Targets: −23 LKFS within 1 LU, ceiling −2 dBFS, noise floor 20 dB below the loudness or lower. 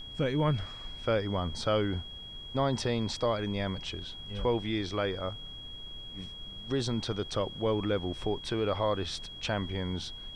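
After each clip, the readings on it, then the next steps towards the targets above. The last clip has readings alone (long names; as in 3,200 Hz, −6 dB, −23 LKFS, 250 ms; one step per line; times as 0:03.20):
interfering tone 3,300 Hz; level of the tone −43 dBFS; background noise floor −45 dBFS; target noise floor −53 dBFS; integrated loudness −32.5 LKFS; sample peak −17.0 dBFS; target loudness −23.0 LKFS
→ notch filter 3,300 Hz, Q 30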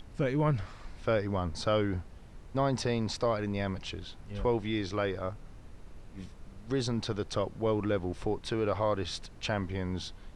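interfering tone none found; background noise floor −50 dBFS; target noise floor −53 dBFS
→ noise reduction from a noise print 6 dB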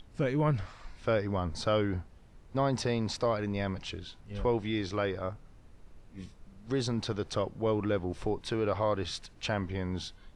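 background noise floor −56 dBFS; integrated loudness −32.5 LKFS; sample peak −17.5 dBFS; target loudness −23.0 LKFS
→ level +9.5 dB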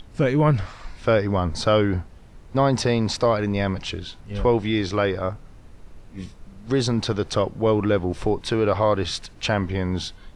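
integrated loudness −23.0 LKFS; sample peak −8.0 dBFS; background noise floor −46 dBFS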